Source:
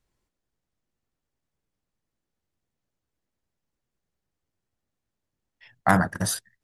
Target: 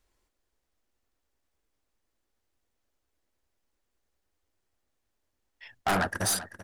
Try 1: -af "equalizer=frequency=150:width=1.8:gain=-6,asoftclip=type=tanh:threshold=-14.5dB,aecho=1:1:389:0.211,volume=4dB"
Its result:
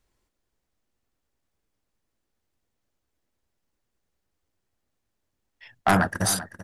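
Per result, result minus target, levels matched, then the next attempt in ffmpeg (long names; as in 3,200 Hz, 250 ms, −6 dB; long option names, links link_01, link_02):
soft clipping: distortion −6 dB; 125 Hz band +3.5 dB
-af "equalizer=frequency=150:width=1.8:gain=-6,asoftclip=type=tanh:threshold=-25.5dB,aecho=1:1:389:0.211,volume=4dB"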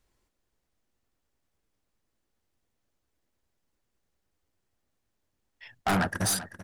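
125 Hz band +3.5 dB
-af "equalizer=frequency=150:width=1.8:gain=-16.5,asoftclip=type=tanh:threshold=-25.5dB,aecho=1:1:389:0.211,volume=4dB"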